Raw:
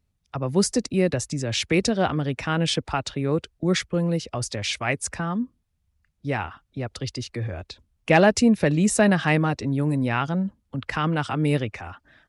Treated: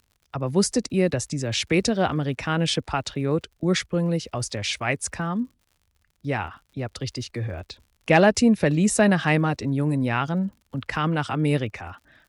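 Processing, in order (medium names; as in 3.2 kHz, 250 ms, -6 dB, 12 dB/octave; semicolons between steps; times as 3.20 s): crackle 81 per s -46 dBFS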